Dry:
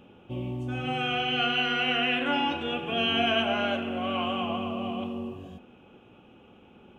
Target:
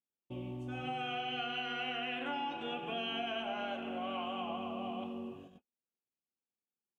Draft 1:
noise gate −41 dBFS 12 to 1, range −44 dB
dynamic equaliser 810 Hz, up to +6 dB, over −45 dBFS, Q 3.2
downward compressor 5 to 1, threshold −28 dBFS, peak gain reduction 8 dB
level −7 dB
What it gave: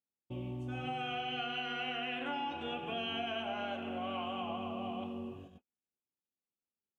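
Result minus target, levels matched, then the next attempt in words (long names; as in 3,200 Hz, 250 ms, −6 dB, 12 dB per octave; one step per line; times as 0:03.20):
125 Hz band +3.0 dB
noise gate −41 dBFS 12 to 1, range −44 dB
dynamic equaliser 810 Hz, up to +6 dB, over −45 dBFS, Q 3.2
downward compressor 5 to 1, threshold −28 dBFS, peak gain reduction 8 dB
parametric band 84 Hz −14 dB 0.55 octaves
level −7 dB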